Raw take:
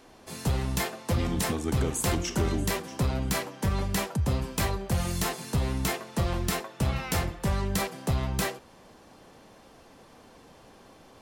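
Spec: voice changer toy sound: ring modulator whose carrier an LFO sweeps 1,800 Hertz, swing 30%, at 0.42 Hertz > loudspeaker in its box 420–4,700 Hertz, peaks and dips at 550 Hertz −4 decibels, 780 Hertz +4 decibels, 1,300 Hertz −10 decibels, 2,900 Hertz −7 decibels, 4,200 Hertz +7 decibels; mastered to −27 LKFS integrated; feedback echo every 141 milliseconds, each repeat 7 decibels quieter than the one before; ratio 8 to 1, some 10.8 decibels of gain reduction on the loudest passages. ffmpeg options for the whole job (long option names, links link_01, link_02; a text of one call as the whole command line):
ffmpeg -i in.wav -af "acompressor=threshold=-33dB:ratio=8,aecho=1:1:141|282|423|564|705:0.447|0.201|0.0905|0.0407|0.0183,aeval=exprs='val(0)*sin(2*PI*1800*n/s+1800*0.3/0.42*sin(2*PI*0.42*n/s))':channel_layout=same,highpass=420,equalizer=frequency=550:width_type=q:width=4:gain=-4,equalizer=frequency=780:width_type=q:width=4:gain=4,equalizer=frequency=1300:width_type=q:width=4:gain=-10,equalizer=frequency=2900:width_type=q:width=4:gain=-7,equalizer=frequency=4200:width_type=q:width=4:gain=7,lowpass=frequency=4700:width=0.5412,lowpass=frequency=4700:width=1.3066,volume=13dB" out.wav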